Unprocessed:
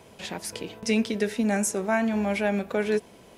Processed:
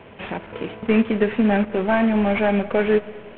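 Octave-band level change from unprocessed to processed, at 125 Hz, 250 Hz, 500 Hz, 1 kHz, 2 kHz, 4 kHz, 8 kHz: +6.5 dB, +6.5 dB, +6.5 dB, +6.5 dB, +5.0 dB, 0.0 dB, under -40 dB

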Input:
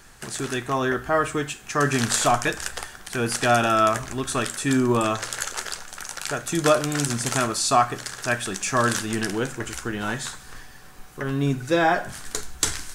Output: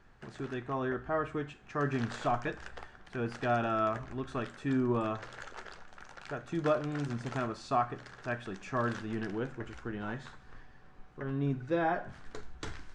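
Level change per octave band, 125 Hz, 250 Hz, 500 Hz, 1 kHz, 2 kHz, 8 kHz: -8.5 dB, -9.0 dB, -9.5 dB, -11.0 dB, -13.5 dB, -30.5 dB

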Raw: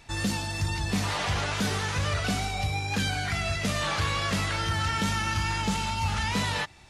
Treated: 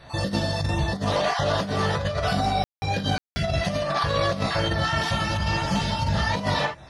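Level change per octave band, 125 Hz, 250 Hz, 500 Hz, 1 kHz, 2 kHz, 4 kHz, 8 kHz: +3.0 dB, +3.5 dB, +10.0 dB, +4.5 dB, +1.0 dB, +2.0 dB, -4.5 dB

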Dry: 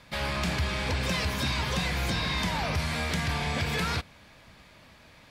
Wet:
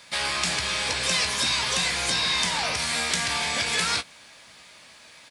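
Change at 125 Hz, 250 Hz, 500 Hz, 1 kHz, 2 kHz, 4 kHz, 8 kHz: -9.5 dB, -5.5 dB, 0.0 dB, +3.0 dB, +5.0 dB, +9.0 dB, +13.0 dB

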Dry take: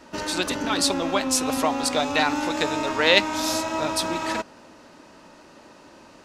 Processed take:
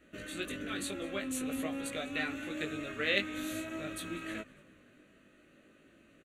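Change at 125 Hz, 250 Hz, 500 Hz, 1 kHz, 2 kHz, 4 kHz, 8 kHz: -9.5 dB, -11.0 dB, -14.5 dB, -21.5 dB, -11.0 dB, -16.0 dB, -16.5 dB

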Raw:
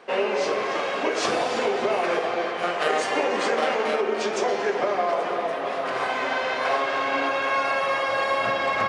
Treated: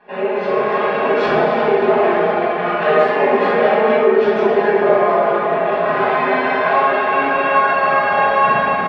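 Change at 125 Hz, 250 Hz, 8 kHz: +13.5 dB, +10.5 dB, under -15 dB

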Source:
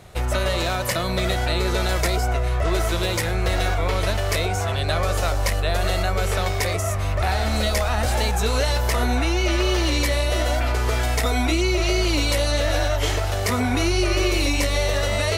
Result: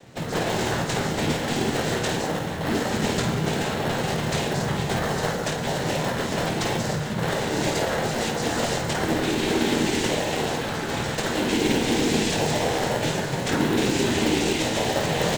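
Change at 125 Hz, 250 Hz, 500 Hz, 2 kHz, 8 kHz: -5.0 dB, +3.0 dB, -1.0 dB, -2.0 dB, -1.0 dB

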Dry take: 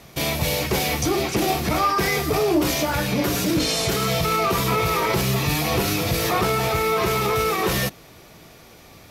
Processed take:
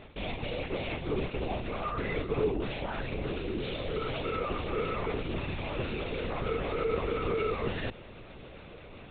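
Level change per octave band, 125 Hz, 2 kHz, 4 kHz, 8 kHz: -11.5 dB, -13.0 dB, -16.5 dB, under -40 dB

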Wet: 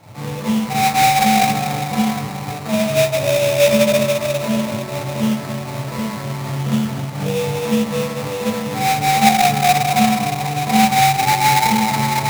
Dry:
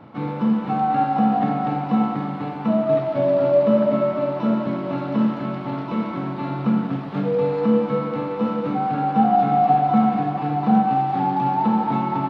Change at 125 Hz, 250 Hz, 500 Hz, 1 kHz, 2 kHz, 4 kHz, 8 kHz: +5.0 dB, +0.5 dB, +2.0 dB, +4.0 dB, +16.0 dB, +21.5 dB, no reading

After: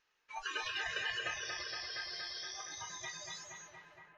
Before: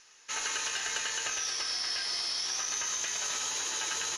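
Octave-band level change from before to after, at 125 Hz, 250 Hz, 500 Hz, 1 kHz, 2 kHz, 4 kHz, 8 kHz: no reading, -5.5 dB, -4.0 dB, -5.5 dB, -3.5 dB, -9.5 dB, -17.5 dB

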